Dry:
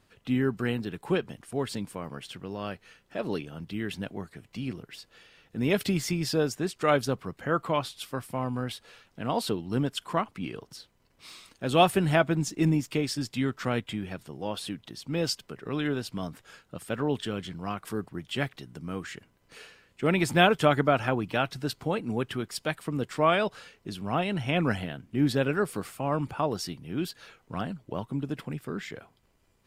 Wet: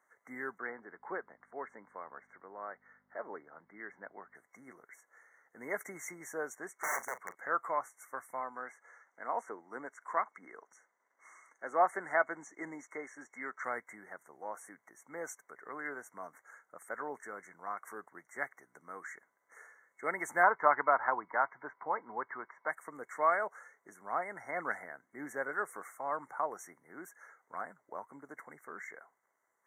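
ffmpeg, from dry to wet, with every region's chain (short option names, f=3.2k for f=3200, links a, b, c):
-filter_complex "[0:a]asettb=1/sr,asplit=3[a][b][c];[a]atrim=end=0.584[d];[b]atrim=start=0.58:end=4.35,asetpts=PTS-STARTPTS,afade=t=in:d=0.004:c=qsin,afade=t=out:st=3.766:d=0.004:c=qsin,highpass=150,lowpass=2k,aeval=exprs='val(0)+0.00708*(sin(2*PI*50*n/s)+sin(2*PI*2*50*n/s)/2+sin(2*PI*3*50*n/s)/3+sin(2*PI*4*50*n/s)/4+sin(2*PI*5*50*n/s)/5)':c=same[e];[c]atrim=start=4.346[f];[d][e]acrossfade=d=0.004:c1=hsin:c2=qsin[g];[g][f]acrossfade=d=0.004:c1=qsin:c2=hsin,asettb=1/sr,asplit=3[h][i][j];[h]atrim=end=6.774[k];[i]atrim=start=6.77:end=7.35,asetpts=PTS-STARTPTS,afade=t=in:d=0.004:c=qsin,afade=t=out:st=0.576:d=0.004:c=qsin,aeval=exprs='(mod(12.6*val(0)+1,2)-1)/12.6':c=same,asplit=2[l][m];[m]adelay=39,volume=-13.5dB[n];[l][n]amix=inputs=2:normalize=0,atrim=end_sample=25578[o];[j]atrim=start=7.346[p];[k][o]acrossfade=d=0.004:c1=hsin:c2=qsin[q];[q][p]acrossfade=d=0.004:c1=qsin:c2=hsin,asettb=1/sr,asplit=3[r][s][t];[r]atrim=end=8.404[u];[s]atrim=start=8.4:end=13.64,asetpts=PTS-STARTPTS,afade=t=in:d=0.004:c=qsin,afade=t=out:st=5.236:d=0.004:c=qsin,highpass=190,lowpass=5k,highshelf=f=3.8k:g=8,acrossover=split=2700[v][w];[w]acompressor=threshold=-40dB:ratio=4:attack=1:release=60[x];[v][x]amix=inputs=2:normalize=0[y];[t]atrim=start=13.636[z];[u][y]acrossfade=d=0.004:c1=hsin:c2=qsin[aa];[aa][z]acrossfade=d=0.004:c1=qsin:c2=hsin,asettb=1/sr,asplit=3[ab][ac][ad];[ab]atrim=end=20.434[ae];[ac]atrim=start=20.43:end=22.69,asetpts=PTS-STARTPTS,afade=t=in:d=0.004:c=qsin,afade=t=out:st=2.256:d=0.004:c=qsin,lowpass=f=2.9k:w=0.5412,lowpass=f=2.9k:w=1.3066,equalizer=f=980:t=o:w=0.42:g=10.5[af];[ad]atrim=start=22.686[ag];[ae][af]acrossfade=d=0.004:c1=hsin:c2=qsin[ah];[ah][ag]acrossfade=d=0.004:c1=qsin:c2=hsin,highpass=920,afftfilt=real='re*(1-between(b*sr/4096,2200,5700))':imag='im*(1-between(b*sr/4096,2200,5700))':win_size=4096:overlap=0.75,highshelf=f=3.4k:g=-10.5"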